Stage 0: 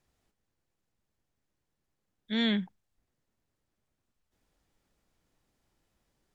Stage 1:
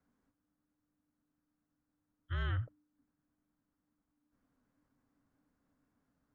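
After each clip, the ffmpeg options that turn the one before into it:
ffmpeg -i in.wav -af "highshelf=frequency=2400:width_type=q:width=1.5:gain=-10,afreqshift=-300,alimiter=level_in=2dB:limit=-24dB:level=0:latency=1:release=34,volume=-2dB,volume=-2.5dB" out.wav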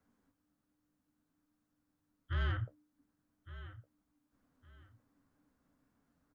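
ffmpeg -i in.wav -af "flanger=delay=9.1:depth=6.9:regen=-43:speed=0.61:shape=sinusoidal,aecho=1:1:1161|2322:0.158|0.0396,asoftclip=type=tanh:threshold=-32dB,volume=6.5dB" out.wav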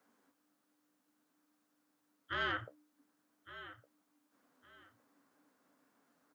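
ffmpeg -i in.wav -af "highpass=360,volume=7dB" out.wav

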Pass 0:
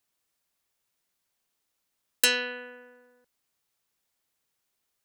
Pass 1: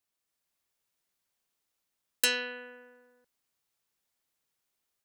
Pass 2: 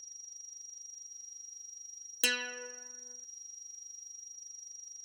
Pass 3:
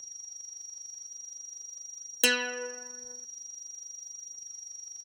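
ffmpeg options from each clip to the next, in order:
ffmpeg -i in.wav -af "dynaudnorm=framelen=250:gausssize=3:maxgain=3.5dB,volume=-6.5dB" out.wav
ffmpeg -i in.wav -af "aeval=exprs='val(0)+0.00708*sin(2*PI*5700*n/s)':channel_layout=same,aphaser=in_gain=1:out_gain=1:delay=4.7:decay=0.54:speed=0.46:type=triangular,volume=-4dB" out.wav
ffmpeg -i in.wav -filter_complex "[0:a]acrossover=split=150|1200[link_01][link_02][link_03];[link_01]aecho=1:1:807:0.355[link_04];[link_02]acontrast=38[link_05];[link_04][link_05][link_03]amix=inputs=3:normalize=0,volume=4.5dB" out.wav

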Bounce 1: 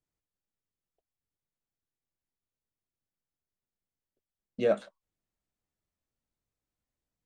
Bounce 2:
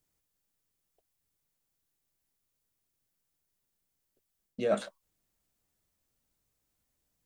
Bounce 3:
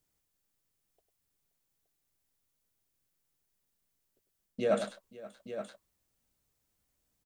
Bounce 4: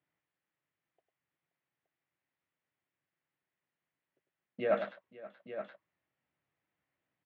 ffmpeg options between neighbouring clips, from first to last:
ffmpeg -i in.wav -af "highshelf=frequency=6200:gain=9,areverse,acompressor=threshold=-31dB:ratio=12,areverse,volume=6.5dB" out.wav
ffmpeg -i in.wav -af "aecho=1:1:100|527|871:0.335|0.112|0.282" out.wav
ffmpeg -i in.wav -af "highpass=frequency=110:width=0.5412,highpass=frequency=110:width=1.3066,equalizer=frequency=110:width_type=q:width=4:gain=-6,equalizer=frequency=220:width_type=q:width=4:gain=-9,equalizer=frequency=440:width_type=q:width=4:gain=-5,equalizer=frequency=1900:width_type=q:width=4:gain=5,lowpass=frequency=2800:width=0.5412,lowpass=frequency=2800:width=1.3066" out.wav

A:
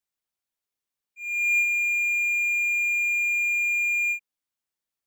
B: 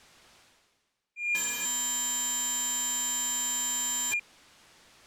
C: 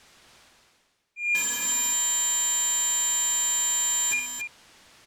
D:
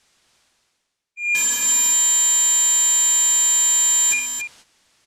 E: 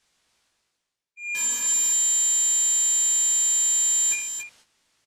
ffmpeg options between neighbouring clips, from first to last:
ffmpeg -i in.wav -af "areverse,acompressor=mode=upward:threshold=-28dB:ratio=2.5,areverse,aeval=exprs='(mod(13.3*val(0)+1,2)-1)/13.3':channel_layout=same,adynamicsmooth=sensitivity=1.5:basefreq=6300,volume=2dB" out.wav
ffmpeg -i in.wav -filter_complex "[0:a]bandreject=frequency=51.28:width_type=h:width=4,bandreject=frequency=102.56:width_type=h:width=4,bandreject=frequency=153.84:width_type=h:width=4,bandreject=frequency=205.12:width_type=h:width=4,bandreject=frequency=256.4:width_type=h:width=4,bandreject=frequency=307.68:width_type=h:width=4,bandreject=frequency=358.96:width_type=h:width=4,bandreject=frequency=410.24:width_type=h:width=4,bandreject=frequency=461.52:width_type=h:width=4,bandreject=frequency=512.8:width_type=h:width=4,bandreject=frequency=564.08:width_type=h:width=4,bandreject=frequency=615.36:width_type=h:width=4,bandreject=frequency=666.64:width_type=h:width=4,bandreject=frequency=717.92:width_type=h:width=4,bandreject=frequency=769.2:width_type=h:width=4,bandreject=frequency=820.48:width_type=h:width=4,bandreject=frequency=871.76:width_type=h:width=4,bandreject=frequency=923.04:width_type=h:width=4,bandreject=frequency=974.32:width_type=h:width=4,bandreject=frequency=1025.6:width_type=h:width=4,bandreject=frequency=1076.88:width_type=h:width=4,bandreject=frequency=1128.16:width_type=h:width=4,bandreject=frequency=1179.44:width_type=h:width=4,bandreject=frequency=1230.72:width_type=h:width=4,bandreject=frequency=1282:width_type=h:width=4,asplit=2[link_01][link_02];[link_02]aecho=0:1:66|278:0.355|0.473[link_03];[link_01][link_03]amix=inputs=2:normalize=0,volume=2.5dB" out.wav
ffmpeg -i in.wav -af "lowpass=10000,agate=range=-12dB:threshold=-51dB:ratio=16:detection=peak,aemphasis=mode=production:type=cd,volume=3dB" out.wav
ffmpeg -i in.wav -filter_complex "[0:a]asplit=2[link_01][link_02];[link_02]adelay=18,volume=-4.5dB[link_03];[link_01][link_03]amix=inputs=2:normalize=0,volume=-8.5dB" out.wav

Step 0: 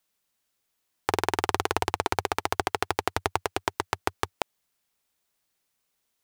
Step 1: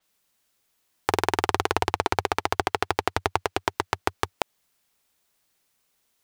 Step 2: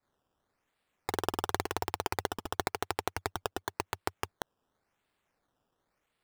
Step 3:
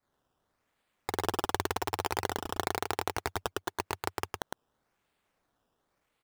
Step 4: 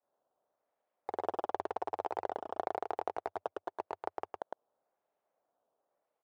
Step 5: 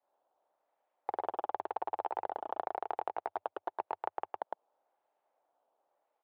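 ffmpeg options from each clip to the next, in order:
ffmpeg -i in.wav -filter_complex "[0:a]asplit=2[link_01][link_02];[link_02]alimiter=limit=-12.5dB:level=0:latency=1:release=76,volume=1.5dB[link_03];[link_01][link_03]amix=inputs=2:normalize=0,adynamicequalizer=threshold=0.00447:dfrequency=6500:dqfactor=0.7:tfrequency=6500:tqfactor=0.7:attack=5:release=100:ratio=0.375:range=3:mode=cutabove:tftype=highshelf,volume=-1dB" out.wav
ffmpeg -i in.wav -af "acrusher=samples=14:mix=1:aa=0.000001:lfo=1:lforange=14:lforate=0.93,volume=-9dB" out.wav
ffmpeg -i in.wav -af "aecho=1:1:108:0.708" out.wav
ffmpeg -i in.wav -af "bandpass=frequency=630:width_type=q:width=2.6:csg=0,volume=2.5dB" out.wav
ffmpeg -i in.wav -af "acompressor=threshold=-35dB:ratio=6,highpass=140,equalizer=frequency=150:width_type=q:width=4:gain=-10,equalizer=frequency=220:width_type=q:width=4:gain=-9,equalizer=frequency=430:width_type=q:width=4:gain=-3,equalizer=frequency=860:width_type=q:width=4:gain=6,lowpass=frequency=3700:width=0.5412,lowpass=frequency=3700:width=1.3066,volume=2.5dB" out.wav

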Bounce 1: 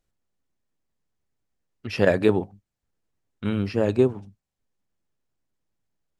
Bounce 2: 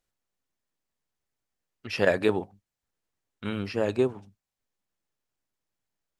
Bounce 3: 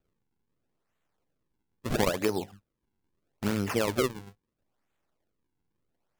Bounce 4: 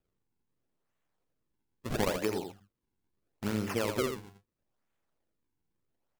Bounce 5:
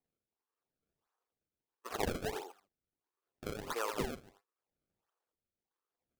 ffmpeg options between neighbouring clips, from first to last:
ffmpeg -i in.wav -af "lowshelf=frequency=410:gain=-9" out.wav
ffmpeg -i in.wav -af "acompressor=threshold=-29dB:ratio=8,acrusher=samples=41:mix=1:aa=0.000001:lfo=1:lforange=65.6:lforate=0.76,volume=6dB" out.wav
ffmpeg -i in.wav -af "aecho=1:1:83:0.447,volume=-4.5dB" out.wav
ffmpeg -i in.wav -af "highpass=frequency=470:width=0.5412,highpass=frequency=470:width=1.3066,equalizer=frequency=590:width_type=q:width=4:gain=-9,equalizer=frequency=1200:width_type=q:width=4:gain=5,equalizer=frequency=2100:width_type=q:width=4:gain=-8,lowpass=frequency=2900:width=0.5412,lowpass=frequency=2900:width=1.3066,acrusher=samples=27:mix=1:aa=0.000001:lfo=1:lforange=43.2:lforate=1.5" out.wav

